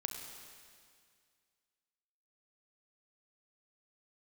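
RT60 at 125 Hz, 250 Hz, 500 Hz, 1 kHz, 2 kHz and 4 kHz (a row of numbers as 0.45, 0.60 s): 2.2, 2.1, 2.1, 2.1, 2.1, 2.1 s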